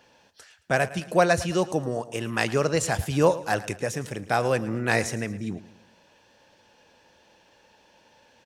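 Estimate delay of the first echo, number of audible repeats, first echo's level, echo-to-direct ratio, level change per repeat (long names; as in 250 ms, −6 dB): 110 ms, 3, −17.0 dB, −16.0 dB, −6.5 dB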